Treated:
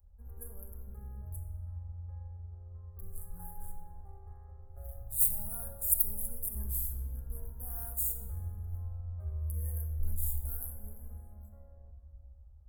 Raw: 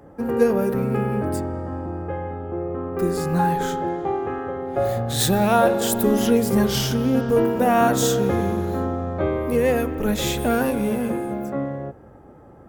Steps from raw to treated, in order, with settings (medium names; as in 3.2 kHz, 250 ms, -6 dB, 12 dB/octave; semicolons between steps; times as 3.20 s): local Wiener filter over 9 samples; inverse Chebyshev band-stop 130–6000 Hz, stop band 40 dB; simulated room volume 2000 m³, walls mixed, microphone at 1.3 m; trim +3 dB